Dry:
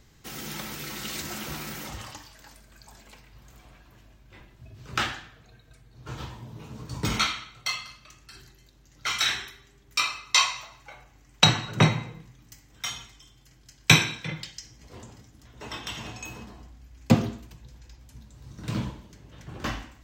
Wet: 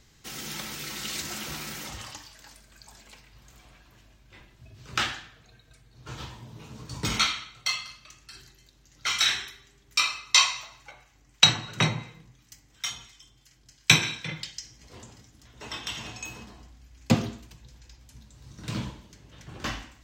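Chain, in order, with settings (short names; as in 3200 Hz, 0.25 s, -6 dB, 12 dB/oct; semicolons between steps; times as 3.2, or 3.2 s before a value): high shelf 12000 Hz -10.5 dB; 10.91–14.03 harmonic tremolo 2.9 Hz, depth 50%, crossover 1100 Hz; high shelf 2300 Hz +8 dB; gain -3 dB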